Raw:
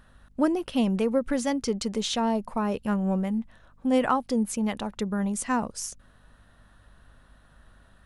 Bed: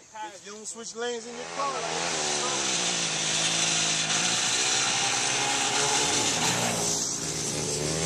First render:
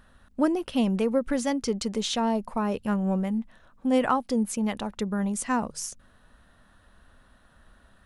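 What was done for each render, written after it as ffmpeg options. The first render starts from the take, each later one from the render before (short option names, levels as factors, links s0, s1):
-af "bandreject=f=50:t=h:w=4,bandreject=f=100:t=h:w=4,bandreject=f=150:t=h:w=4"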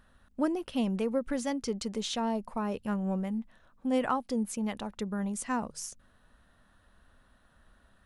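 -af "volume=0.531"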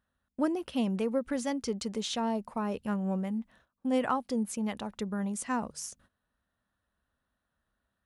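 -af "highpass=48,agate=range=0.141:threshold=0.00112:ratio=16:detection=peak"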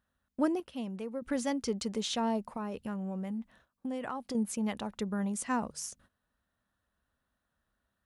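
-filter_complex "[0:a]asettb=1/sr,asplit=3[s0][s1][s2];[s0]atrim=end=2.424[s3];[s1]atrim=start=2.42:end=4.35,asetpts=PTS-STARTPTS,afade=t=in:d=0.004:c=qsin,afade=t=out:st=1.926:d=0.004:c=qsin,acompressor=threshold=0.0224:ratio=6:attack=3.2:release=140:knee=1:detection=peak[s4];[s2]atrim=start=4.346[s5];[s3][s4]acrossfade=d=0.004:c1=hsin:c2=qsin[s6];[s6][s5]acrossfade=d=0.004:c1=qsin:c2=hsin,asplit=3[s7][s8][s9];[s7]atrim=end=0.602[s10];[s8]atrim=start=0.598:end=1.222,asetpts=PTS-STARTPTS,volume=0.376[s11];[s9]atrim=start=1.218[s12];[s10][s11]acrossfade=d=0.004:c1=hsin:c2=hsin[s13];[s13][s12]acrossfade=d=0.004:c1=hsin:c2=hsin"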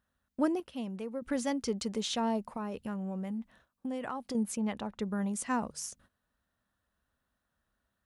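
-filter_complex "[0:a]asettb=1/sr,asplit=3[s0][s1][s2];[s0]atrim=end=4.574[s3];[s1]atrim=start=4.57:end=5.03,asetpts=PTS-STARTPTS,afade=t=in:d=0.004:c=qsin,afade=t=out:st=0.456:d=0.004:c=qsin,lowpass=f=3400:p=1[s4];[s2]atrim=start=5.026[s5];[s3][s4]acrossfade=d=0.004:c1=hsin:c2=qsin[s6];[s6][s5]acrossfade=d=0.004:c1=qsin:c2=hsin"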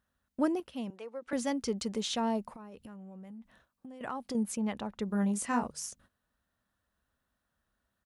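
-filter_complex "[0:a]asettb=1/sr,asplit=3[s0][s1][s2];[s0]atrim=end=0.904[s3];[s1]atrim=start=0.9:end=1.33,asetpts=PTS-STARTPTS,afade=t=in:d=0.004:c=qsin,afade=t=out:st=0.426:d=0.004:c=qsin,acrossover=split=380 7600:gain=0.0794 1 0.224[s4][s5][s6];[s4][s5][s6]amix=inputs=3:normalize=0[s7];[s2]atrim=start=1.326[s8];[s3][s7]acrossfade=d=0.004:c1=hsin:c2=qsin[s9];[s9][s8]acrossfade=d=0.004:c1=qsin:c2=hsin,asettb=1/sr,asplit=3[s10][s11][s12];[s10]atrim=end=2.554[s13];[s11]atrim=start=2.55:end=4.01,asetpts=PTS-STARTPTS,afade=t=in:d=0.004:c=qsin,afade=t=out:st=1.456:d=0.004:c=qsin,acompressor=threshold=0.00631:ratio=12:attack=3.2:release=140:knee=1:detection=peak[s14];[s12]atrim=start=4.006[s15];[s13][s14]acrossfade=d=0.004:c1=hsin:c2=qsin[s16];[s16][s15]acrossfade=d=0.004:c1=qsin:c2=hsin,asplit=3[s17][s18][s19];[s17]afade=t=out:st=5.09:d=0.02[s20];[s18]asplit=2[s21][s22];[s22]adelay=25,volume=0.596[s23];[s21][s23]amix=inputs=2:normalize=0,afade=t=in:st=5.09:d=0.02,afade=t=out:st=5.66:d=0.02[s24];[s19]afade=t=in:st=5.66:d=0.02[s25];[s20][s24][s25]amix=inputs=3:normalize=0"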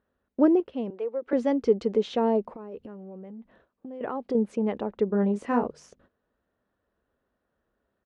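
-af "lowpass=3000,equalizer=f=420:w=1.1:g=14.5"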